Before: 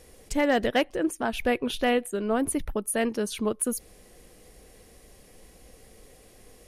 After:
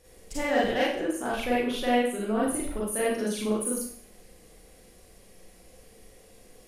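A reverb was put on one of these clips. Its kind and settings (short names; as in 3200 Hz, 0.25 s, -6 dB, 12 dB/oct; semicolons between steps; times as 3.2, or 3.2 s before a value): Schroeder reverb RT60 0.56 s, combs from 33 ms, DRR -7 dB; gain -8.5 dB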